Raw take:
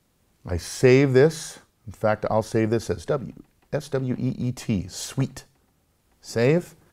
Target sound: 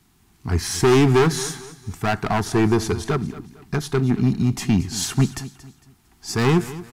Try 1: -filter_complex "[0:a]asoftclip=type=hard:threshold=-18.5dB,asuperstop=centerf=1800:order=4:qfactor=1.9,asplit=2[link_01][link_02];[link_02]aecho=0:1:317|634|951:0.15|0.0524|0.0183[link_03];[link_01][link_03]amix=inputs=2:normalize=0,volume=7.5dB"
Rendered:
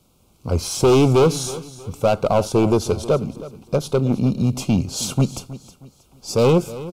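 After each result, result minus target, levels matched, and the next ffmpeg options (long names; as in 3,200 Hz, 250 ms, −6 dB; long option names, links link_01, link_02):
2,000 Hz band −8.5 dB; echo 90 ms late
-filter_complex "[0:a]asoftclip=type=hard:threshold=-18.5dB,asuperstop=centerf=540:order=4:qfactor=1.9,asplit=2[link_01][link_02];[link_02]aecho=0:1:317|634|951:0.15|0.0524|0.0183[link_03];[link_01][link_03]amix=inputs=2:normalize=0,volume=7.5dB"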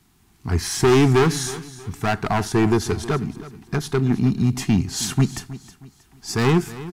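echo 90 ms late
-filter_complex "[0:a]asoftclip=type=hard:threshold=-18.5dB,asuperstop=centerf=540:order=4:qfactor=1.9,asplit=2[link_01][link_02];[link_02]aecho=0:1:227|454|681:0.15|0.0524|0.0183[link_03];[link_01][link_03]amix=inputs=2:normalize=0,volume=7.5dB"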